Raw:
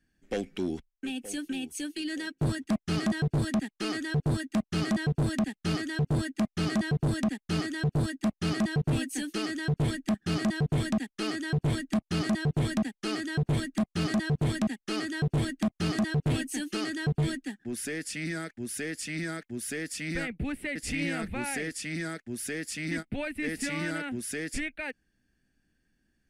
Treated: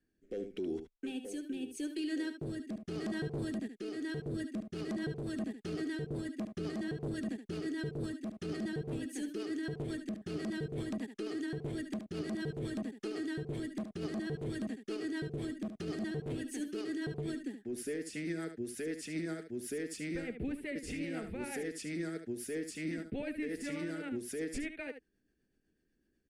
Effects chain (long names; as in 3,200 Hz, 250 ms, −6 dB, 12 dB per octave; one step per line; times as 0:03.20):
parametric band 410 Hz +12.5 dB 1 octave
brickwall limiter −22.5 dBFS, peak gain reduction 9 dB
rotating-speaker cabinet horn 0.85 Hz, later 8 Hz, at 0:03.93
on a send: single-tap delay 73 ms −9.5 dB
on the sum: level −7 dB